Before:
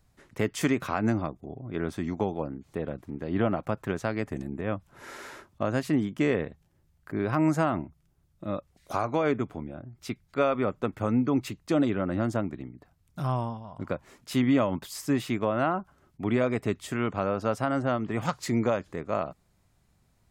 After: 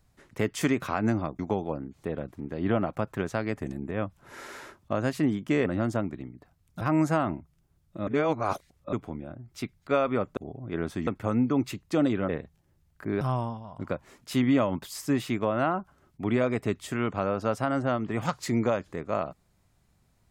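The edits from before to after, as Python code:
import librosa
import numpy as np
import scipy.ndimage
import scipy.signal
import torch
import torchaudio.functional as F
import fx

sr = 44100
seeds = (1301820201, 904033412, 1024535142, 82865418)

y = fx.edit(x, sr, fx.move(start_s=1.39, length_s=0.7, to_s=10.84),
    fx.swap(start_s=6.36, length_s=0.92, other_s=12.06, other_length_s=1.15),
    fx.reverse_span(start_s=8.54, length_s=0.86), tone=tone)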